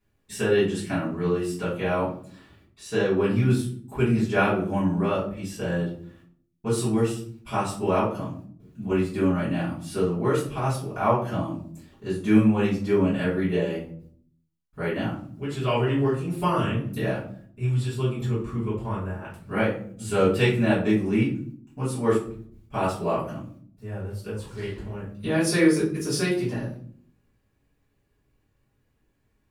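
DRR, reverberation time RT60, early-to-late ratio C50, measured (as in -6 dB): -10.5 dB, 0.55 s, 5.5 dB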